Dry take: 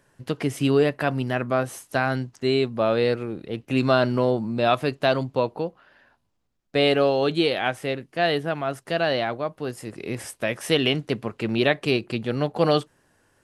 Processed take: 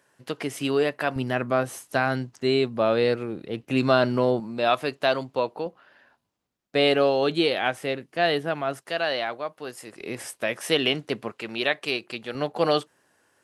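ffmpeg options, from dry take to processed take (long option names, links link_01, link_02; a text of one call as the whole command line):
ffmpeg -i in.wav -af "asetnsamples=nb_out_samples=441:pad=0,asendcmd='1.16 highpass f 120;4.4 highpass f 430;5.66 highpass f 190;8.81 highpass f 710;10.01 highpass f 320;11.32 highpass f 890;12.35 highpass f 370',highpass=frequency=450:poles=1" out.wav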